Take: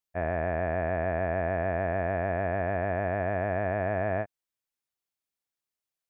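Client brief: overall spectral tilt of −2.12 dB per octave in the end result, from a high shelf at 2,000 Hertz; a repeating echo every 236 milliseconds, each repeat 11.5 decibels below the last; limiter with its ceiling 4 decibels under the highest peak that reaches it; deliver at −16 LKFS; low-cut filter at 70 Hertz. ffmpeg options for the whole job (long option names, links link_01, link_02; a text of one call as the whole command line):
ffmpeg -i in.wav -af "highpass=70,highshelf=frequency=2000:gain=8.5,alimiter=limit=-18.5dB:level=0:latency=1,aecho=1:1:236|472|708:0.266|0.0718|0.0194,volume=15.5dB" out.wav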